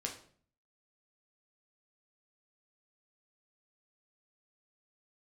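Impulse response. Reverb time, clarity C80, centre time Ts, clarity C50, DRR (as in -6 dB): 0.50 s, 13.0 dB, 19 ms, 9.0 dB, 0.5 dB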